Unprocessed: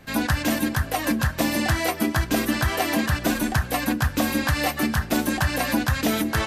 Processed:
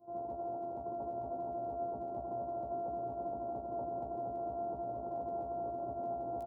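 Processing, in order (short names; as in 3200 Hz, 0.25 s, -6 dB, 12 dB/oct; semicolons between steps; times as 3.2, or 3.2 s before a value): sample sorter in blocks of 128 samples; steep low-pass 830 Hz 48 dB/oct; split-band echo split 330 Hz, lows 0.714 s, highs 0.23 s, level -5 dB; AGC gain up to 4 dB; pre-echo 61 ms -16 dB; limiter -17.5 dBFS, peak gain reduction 10.5 dB; differentiator; doubler 16 ms -4.5 dB; gain +8.5 dB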